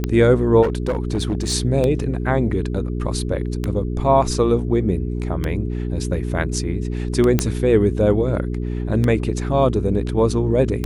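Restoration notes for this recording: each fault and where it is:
hum 60 Hz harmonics 7 -24 dBFS
tick 33 1/3 rpm -9 dBFS
0.62–1.54 s: clipped -16 dBFS
7.39 s: pop -3 dBFS

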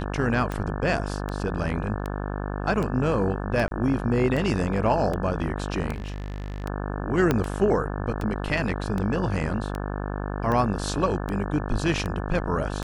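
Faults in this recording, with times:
buzz 50 Hz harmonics 35 -30 dBFS
tick 78 rpm -17 dBFS
3.68–3.71 s: dropout 32 ms
5.92–6.64 s: clipped -29 dBFS
7.31 s: pop -8 dBFS

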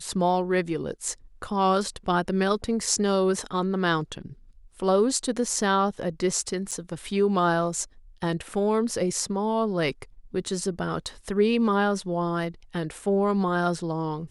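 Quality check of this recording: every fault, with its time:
6.71–6.72 s: dropout 6.8 ms

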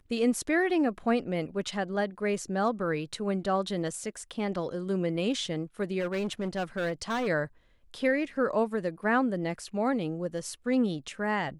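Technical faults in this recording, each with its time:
5.99–7.28 s: clipped -26.5 dBFS

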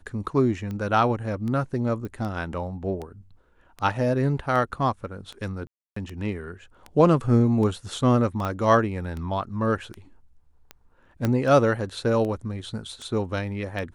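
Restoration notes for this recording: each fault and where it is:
tick 78 rpm -22 dBFS
2.05 s: pop -24 dBFS
5.67–5.96 s: dropout 294 ms
8.45 s: pop -16 dBFS
11.25 s: pop -11 dBFS

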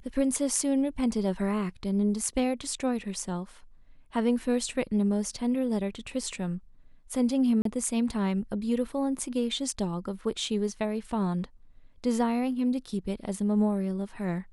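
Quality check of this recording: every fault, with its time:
7.62–7.65 s: dropout 33 ms

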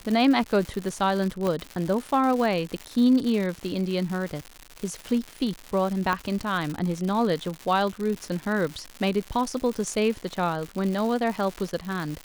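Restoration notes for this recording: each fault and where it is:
crackle 210 per s -29 dBFS
1.47 s: pop -15 dBFS
6.13 s: pop -13 dBFS

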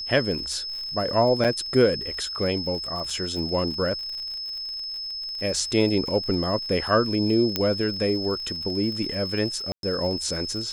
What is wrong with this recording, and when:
crackle 60 per s -33 dBFS
whine 5.2 kHz -30 dBFS
1.44–1.45 s: dropout 6.8 ms
3.10 s: dropout 3.6 ms
7.56 s: pop -7 dBFS
9.72–9.83 s: dropout 112 ms

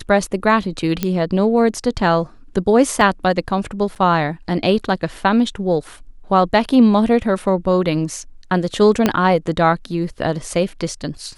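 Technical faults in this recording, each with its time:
1.03 s: pop -5 dBFS
3.01 s: dropout 2.1 ms
3.95–3.96 s: dropout 8 ms
9.06 s: pop -1 dBFS

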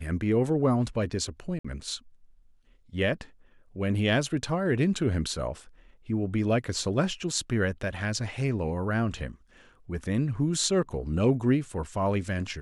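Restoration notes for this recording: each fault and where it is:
1.59–1.65 s: dropout 55 ms

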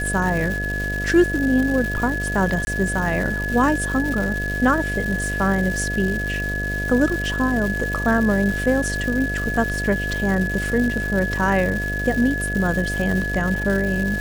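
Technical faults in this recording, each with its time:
buzz 50 Hz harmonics 14 -27 dBFS
crackle 420 per s -26 dBFS
whine 1.7 kHz -25 dBFS
2.65–2.67 s: dropout 20 ms

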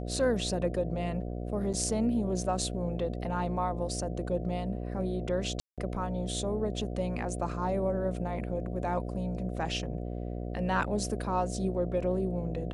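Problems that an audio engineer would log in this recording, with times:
buzz 60 Hz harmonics 12 -36 dBFS
1.73–1.74 s: dropout 7.2 ms
5.60–5.78 s: dropout 177 ms

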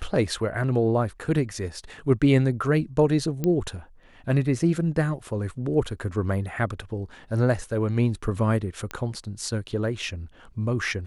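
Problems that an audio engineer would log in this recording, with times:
3.44 s: pop -13 dBFS
8.91 s: pop -16 dBFS

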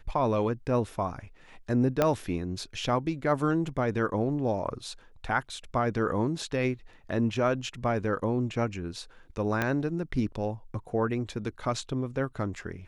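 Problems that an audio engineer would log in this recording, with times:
2.02 s: pop -10 dBFS
9.62 s: pop -13 dBFS

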